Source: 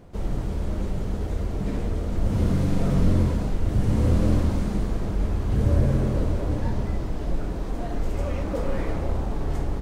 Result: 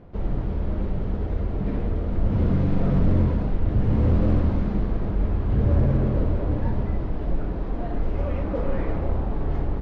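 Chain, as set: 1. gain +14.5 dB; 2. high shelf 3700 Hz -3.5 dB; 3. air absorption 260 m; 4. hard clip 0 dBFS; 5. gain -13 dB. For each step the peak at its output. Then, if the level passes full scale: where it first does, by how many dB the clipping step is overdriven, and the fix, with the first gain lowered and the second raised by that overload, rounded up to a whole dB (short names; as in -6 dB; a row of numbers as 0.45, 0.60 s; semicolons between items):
+5.5, +5.5, +5.5, 0.0, -13.0 dBFS; step 1, 5.5 dB; step 1 +8.5 dB, step 5 -7 dB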